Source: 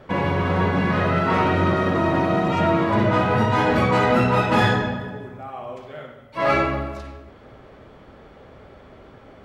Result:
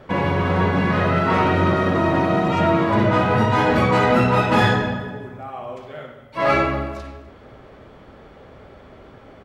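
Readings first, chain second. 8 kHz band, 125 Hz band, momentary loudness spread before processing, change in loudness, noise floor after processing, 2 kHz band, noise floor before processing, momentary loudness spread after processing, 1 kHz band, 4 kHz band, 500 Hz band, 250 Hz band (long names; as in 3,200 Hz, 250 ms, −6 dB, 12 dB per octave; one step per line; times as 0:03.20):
+1.5 dB, +1.5 dB, 17 LU, +1.5 dB, −45 dBFS, +1.5 dB, −47 dBFS, 17 LU, +1.5 dB, +1.5 dB, +1.5 dB, +1.5 dB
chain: single-tap delay 251 ms −24 dB
level +1.5 dB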